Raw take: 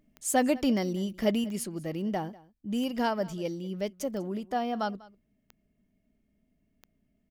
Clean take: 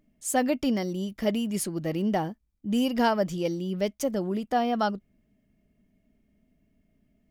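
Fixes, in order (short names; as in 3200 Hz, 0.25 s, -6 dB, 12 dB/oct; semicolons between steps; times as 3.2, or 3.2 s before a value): clip repair -14 dBFS; de-click; inverse comb 0.195 s -21.5 dB; gain correction +5 dB, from 1.44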